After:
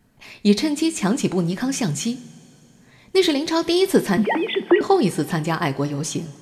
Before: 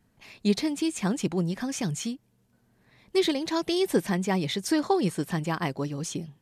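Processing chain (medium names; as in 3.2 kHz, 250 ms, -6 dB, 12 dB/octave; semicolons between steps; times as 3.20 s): 4.17–4.81 s: formants replaced by sine waves; reverberation, pre-delay 3 ms, DRR 9.5 dB; trim +7 dB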